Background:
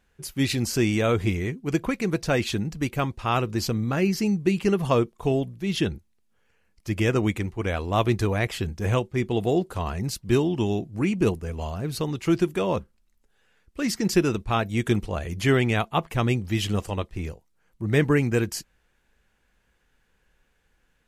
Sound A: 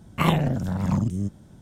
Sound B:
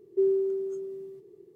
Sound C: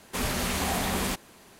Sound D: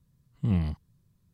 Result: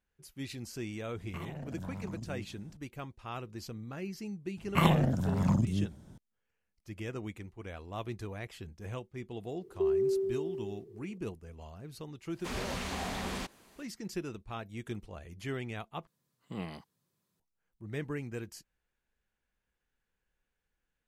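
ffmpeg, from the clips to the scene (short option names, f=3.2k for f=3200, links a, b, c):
-filter_complex "[1:a]asplit=2[a][b];[0:a]volume=-17dB[c];[a]acompressor=threshold=-28dB:ratio=10:attack=0.61:release=102:knee=1:detection=rms[d];[2:a]acompressor=threshold=-25dB:ratio=6:attack=3.2:release=140:knee=1:detection=peak[e];[3:a]acrossover=split=7300[f][g];[g]acompressor=threshold=-50dB:ratio=4:attack=1:release=60[h];[f][h]amix=inputs=2:normalize=0[i];[4:a]highpass=370[j];[c]asplit=2[k][l];[k]atrim=end=16.074[m];[j]atrim=end=1.33,asetpts=PTS-STARTPTS,volume=-1dB[n];[l]atrim=start=17.396[o];[d]atrim=end=1.61,asetpts=PTS-STARTPTS,volume=-8dB,afade=t=in:d=0.004:c=hsin,afade=t=out:st=1.606:d=0.004:c=hsin,adelay=1160[p];[b]atrim=end=1.61,asetpts=PTS-STARTPTS,volume=-4dB,afade=t=in:d=0.004:c=hsin,afade=t=out:st=1.606:d=0.004:c=hsin,adelay=201537S[q];[e]atrim=end=1.55,asetpts=PTS-STARTPTS,volume=-0.5dB,afade=t=in:d=0.004:c=hsin,afade=t=out:st=1.546:d=0.004:c=hsin,adelay=9630[r];[i]atrim=end=1.59,asetpts=PTS-STARTPTS,volume=-8dB,afade=t=in:d=0.1,afade=t=out:st=1.49:d=0.1,adelay=12310[s];[m][n]acrossfade=d=0.004:c1=hsin:c2=hsin[t];[t][o]acrossfade=d=0.004:c1=hsin:c2=hsin[u];[u][p][q][r][s]amix=inputs=5:normalize=0"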